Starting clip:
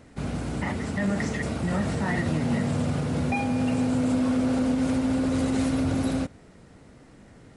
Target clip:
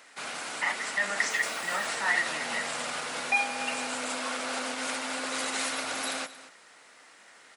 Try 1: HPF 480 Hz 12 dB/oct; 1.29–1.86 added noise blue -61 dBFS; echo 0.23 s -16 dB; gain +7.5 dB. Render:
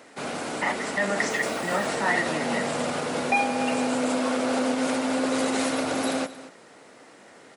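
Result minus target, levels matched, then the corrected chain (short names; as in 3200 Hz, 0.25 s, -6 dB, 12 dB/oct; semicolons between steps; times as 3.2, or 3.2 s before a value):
500 Hz band +7.5 dB
HPF 1200 Hz 12 dB/oct; 1.29–1.86 added noise blue -61 dBFS; echo 0.23 s -16 dB; gain +7.5 dB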